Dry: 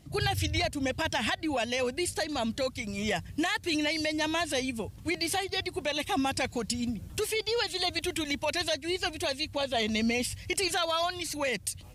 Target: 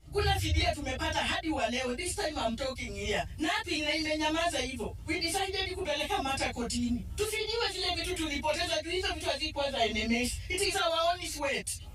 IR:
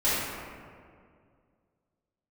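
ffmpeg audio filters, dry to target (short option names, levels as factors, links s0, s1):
-filter_complex "[1:a]atrim=start_sample=2205,afade=t=out:st=0.14:d=0.01,atrim=end_sample=6615,asetrate=66150,aresample=44100[s0];[0:a][s0]afir=irnorm=-1:irlink=0,volume=0.376"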